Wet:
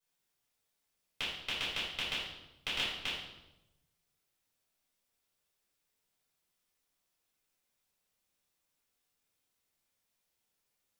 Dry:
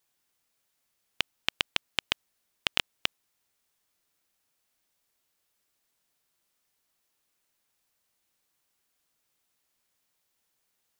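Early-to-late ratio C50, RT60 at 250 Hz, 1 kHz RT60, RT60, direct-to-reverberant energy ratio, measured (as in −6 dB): 1.5 dB, 1.2 s, 0.85 s, 0.95 s, −9.5 dB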